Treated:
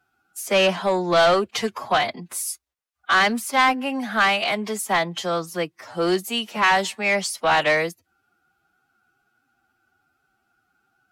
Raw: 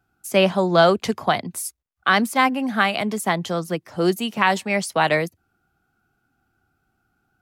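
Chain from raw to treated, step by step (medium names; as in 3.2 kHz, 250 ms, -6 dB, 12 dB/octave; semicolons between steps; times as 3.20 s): time stretch by phase-locked vocoder 1.5×; overdrive pedal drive 16 dB, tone 7.7 kHz, clips at -3 dBFS; trim -6 dB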